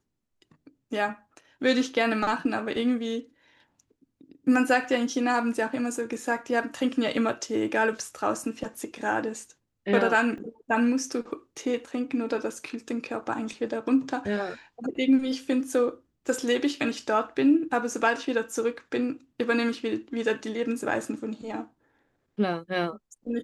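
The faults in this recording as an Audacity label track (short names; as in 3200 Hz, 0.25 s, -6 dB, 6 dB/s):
10.380000	10.380000	gap 2.4 ms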